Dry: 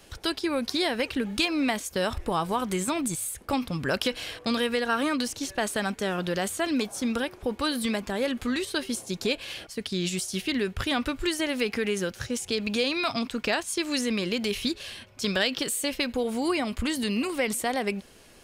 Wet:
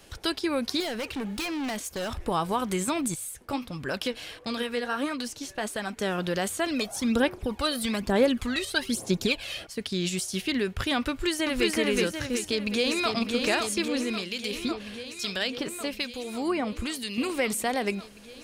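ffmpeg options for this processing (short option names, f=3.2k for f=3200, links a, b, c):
-filter_complex "[0:a]asettb=1/sr,asplit=3[a][b][c];[a]atrim=end=0.804[d];[b]atrim=start=0.8:end=2.24,asetpts=PTS-STARTPTS,afade=t=in:d=0.004:c=qsin,afade=t=out:st=1.436:d=0.004:c=qsin,asoftclip=type=hard:threshold=-29dB[e];[c]atrim=start=2.236[f];[d][e]acrossfade=d=0.004:c1=hsin:c2=qsin[g];[g][f]acrossfade=d=0.004:c1=qsin:c2=hsin,asettb=1/sr,asplit=3[h][i][j];[h]atrim=end=3.144[k];[i]atrim=start=3.14:end=5.97,asetpts=PTS-STARTPTS,afade=t=in:d=0.004:c=qsin,afade=t=out:st=2.826:d=0.004:c=qsin,flanger=delay=0.9:depth=8.2:regen=61:speed=1.5:shape=triangular[l];[j]atrim=start=5.966[m];[k][l]acrossfade=d=0.004:c1=hsin:c2=qsin[n];[n][m]acrossfade=d=0.004:c1=qsin:c2=hsin,asplit=3[o][p][q];[o]afade=t=out:st=6.69:d=0.02[r];[p]aphaser=in_gain=1:out_gain=1:delay=1.6:decay=0.57:speed=1.1:type=sinusoidal,afade=t=in:st=6.69:d=0.02,afade=t=out:st=9.61:d=0.02[s];[q]afade=t=in:st=9.61:d=0.02[t];[r][s][t]amix=inputs=3:normalize=0,asplit=2[u][v];[v]afade=t=in:st=11.09:d=0.01,afade=t=out:st=11.7:d=0.01,aecho=0:1:370|740|1110|1480|1850|2220:0.944061|0.424827|0.191172|0.0860275|0.0387124|0.0174206[w];[u][w]amix=inputs=2:normalize=0,asplit=2[x][y];[y]afade=t=in:st=12.3:d=0.01,afade=t=out:st=13.13:d=0.01,aecho=0:1:550|1100|1650|2200|2750|3300|3850|4400|4950|5500|6050|6600:0.595662|0.47653|0.381224|0.304979|0.243983|0.195187|0.156149|0.124919|0.0999355|0.0799484|0.0639587|0.051167[z];[x][z]amix=inputs=2:normalize=0,asettb=1/sr,asplit=3[aa][ab][ac];[aa]atrim=end=13.884[ad];[ab]atrim=start=13.88:end=17.18,asetpts=PTS-STARTPTS,afade=t=in:d=0.004:c=qsin,afade=t=out:st=3.296:d=0.004:c=qsin,acrossover=split=2100[ae][af];[ae]aeval=exprs='val(0)*(1-0.7/2+0.7/2*cos(2*PI*1.1*n/s))':c=same[ag];[af]aeval=exprs='val(0)*(1-0.7/2-0.7/2*cos(2*PI*1.1*n/s))':c=same[ah];[ag][ah]amix=inputs=2:normalize=0[ai];[ac]atrim=start=17.176[aj];[ad][ai]acrossfade=d=0.004:c1=hsin:c2=qsin[ak];[ak][aj]acrossfade=d=0.004:c1=qsin:c2=hsin"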